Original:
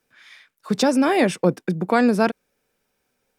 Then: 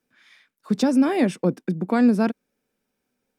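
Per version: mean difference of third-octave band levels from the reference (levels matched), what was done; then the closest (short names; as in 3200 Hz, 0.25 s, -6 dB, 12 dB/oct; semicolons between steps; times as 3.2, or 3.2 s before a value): 3.5 dB: bell 240 Hz +9 dB 1.1 oct; gain -7 dB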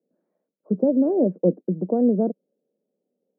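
11.0 dB: elliptic band-pass 180–590 Hz, stop band 70 dB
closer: first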